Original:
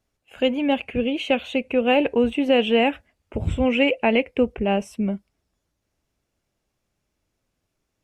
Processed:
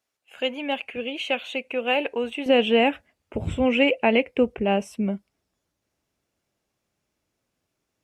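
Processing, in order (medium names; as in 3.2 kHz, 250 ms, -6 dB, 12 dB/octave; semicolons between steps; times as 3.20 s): high-pass 870 Hz 6 dB/octave, from 2.46 s 130 Hz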